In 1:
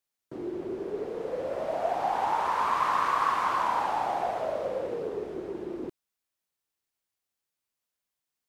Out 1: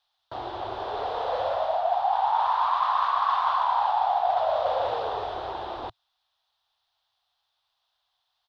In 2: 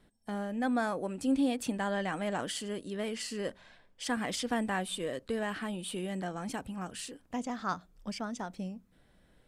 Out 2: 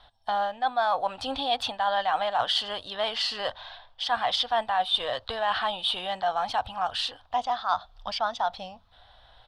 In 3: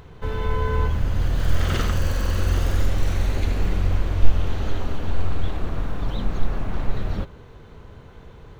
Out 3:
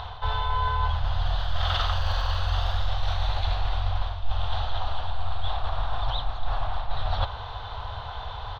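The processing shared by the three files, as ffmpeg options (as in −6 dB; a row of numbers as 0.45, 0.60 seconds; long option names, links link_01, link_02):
-af "firequalizer=gain_entry='entry(110,0);entry(150,-19);entry(220,-18);entry(370,-17);entry(730,12);entry(2200,-3);entry(3500,14);entry(7200,-15)':delay=0.05:min_phase=1,areverse,acompressor=threshold=-30dB:ratio=6,areverse,volume=8dB"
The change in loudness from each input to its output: +4.0, +7.5, −3.5 LU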